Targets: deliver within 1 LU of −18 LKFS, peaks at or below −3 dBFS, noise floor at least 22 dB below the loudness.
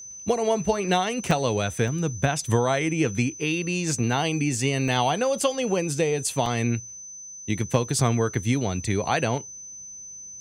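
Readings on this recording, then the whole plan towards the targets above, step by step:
number of dropouts 4; longest dropout 1.5 ms; interfering tone 6,100 Hz; level of the tone −38 dBFS; integrated loudness −24.5 LKFS; sample peak −6.0 dBFS; target loudness −18.0 LKFS
→ repair the gap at 0:01.31/0:01.88/0:04.88/0:06.46, 1.5 ms
notch filter 6,100 Hz, Q 30
level +6.5 dB
brickwall limiter −3 dBFS

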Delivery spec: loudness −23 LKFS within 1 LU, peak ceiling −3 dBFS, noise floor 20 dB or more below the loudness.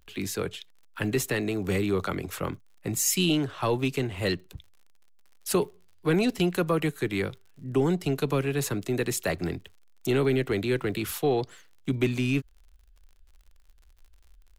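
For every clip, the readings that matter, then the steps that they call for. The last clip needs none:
crackle rate 54 per second; integrated loudness −28.0 LKFS; sample peak −12.0 dBFS; target loudness −23.0 LKFS
→ click removal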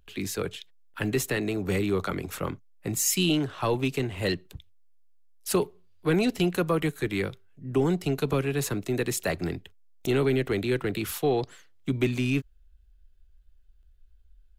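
crackle rate 0.27 per second; integrated loudness −28.0 LKFS; sample peak −12.0 dBFS; target loudness −23.0 LKFS
→ level +5 dB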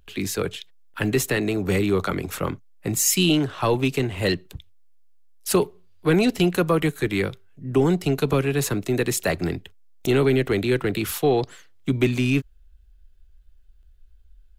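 integrated loudness −23.0 LKFS; sample peak −7.0 dBFS; background noise floor −52 dBFS

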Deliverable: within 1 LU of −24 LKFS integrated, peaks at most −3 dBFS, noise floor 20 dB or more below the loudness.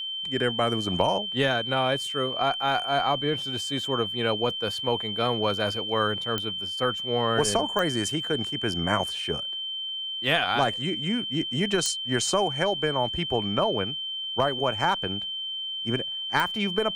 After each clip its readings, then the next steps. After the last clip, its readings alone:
number of clicks 4; interfering tone 3,100 Hz; level of the tone −30 dBFS; integrated loudness −26.0 LKFS; sample peak −7.5 dBFS; target loudness −24.0 LKFS
→ click removal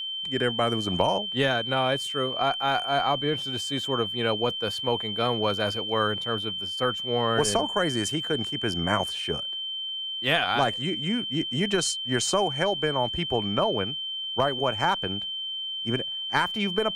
number of clicks 0; interfering tone 3,100 Hz; level of the tone −30 dBFS
→ notch filter 3,100 Hz, Q 30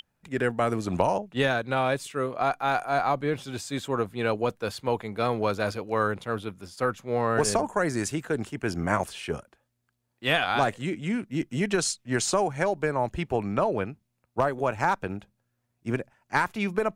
interfering tone none found; integrated loudness −27.5 LKFS; sample peak −8.0 dBFS; target loudness −24.0 LKFS
→ level +3.5 dB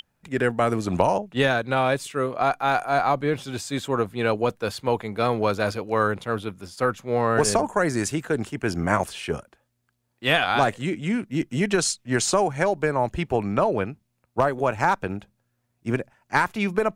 integrated loudness −24.0 LKFS; sample peak −4.5 dBFS; background noise floor −74 dBFS

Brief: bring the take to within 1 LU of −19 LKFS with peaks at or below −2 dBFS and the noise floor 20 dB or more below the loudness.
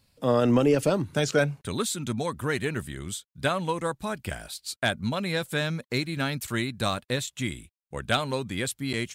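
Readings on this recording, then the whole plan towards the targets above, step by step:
number of dropouts 1; longest dropout 6.6 ms; integrated loudness −28.0 LKFS; sample peak −12.0 dBFS; target loudness −19.0 LKFS
→ repair the gap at 0:08.93, 6.6 ms
level +9 dB

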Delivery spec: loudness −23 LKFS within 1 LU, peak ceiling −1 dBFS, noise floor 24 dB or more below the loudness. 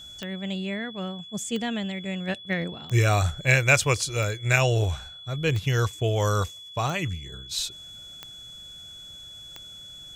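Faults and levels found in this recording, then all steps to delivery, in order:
number of clicks 8; interfering tone 3,400 Hz; level of the tone −41 dBFS; integrated loudness −26.0 LKFS; sample peak −4.5 dBFS; target loudness −23.0 LKFS
→ click removal
notch filter 3,400 Hz, Q 30
level +3 dB

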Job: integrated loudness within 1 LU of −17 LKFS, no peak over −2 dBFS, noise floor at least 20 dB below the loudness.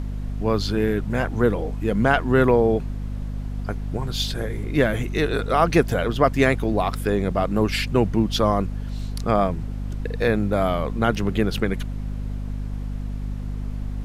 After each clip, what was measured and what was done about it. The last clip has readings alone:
mains hum 50 Hz; hum harmonics up to 250 Hz; level of the hum −26 dBFS; background noise floor −30 dBFS; target noise floor −43 dBFS; integrated loudness −23.0 LKFS; sample peak −4.5 dBFS; target loudness −17.0 LKFS
→ hum removal 50 Hz, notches 5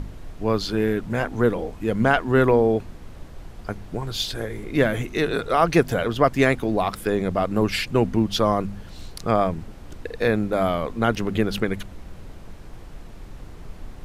mains hum none found; background noise floor −41 dBFS; target noise floor −43 dBFS
→ noise reduction from a noise print 6 dB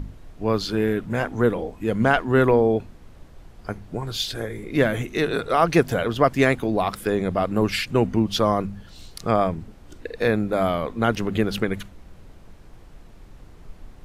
background noise floor −47 dBFS; integrated loudness −22.5 LKFS; sample peak −5.0 dBFS; target loudness −17.0 LKFS
→ level +5.5 dB
brickwall limiter −2 dBFS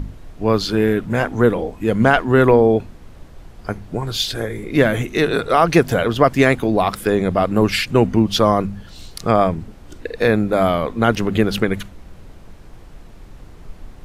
integrated loudness −17.5 LKFS; sample peak −2.0 dBFS; background noise floor −41 dBFS

